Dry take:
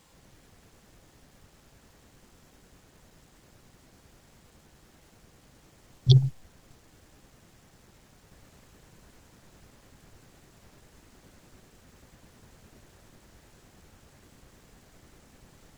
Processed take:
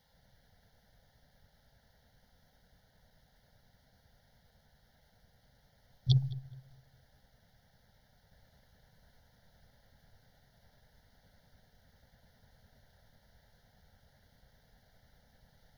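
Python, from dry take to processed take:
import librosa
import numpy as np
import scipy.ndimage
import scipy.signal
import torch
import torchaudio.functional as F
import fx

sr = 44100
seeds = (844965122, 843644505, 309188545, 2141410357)

p1 = fx.fixed_phaser(x, sr, hz=1700.0, stages=8)
p2 = p1 + fx.echo_filtered(p1, sr, ms=209, feedback_pct=32, hz=2000.0, wet_db=-15.5, dry=0)
y = p2 * librosa.db_to_amplitude(-7.0)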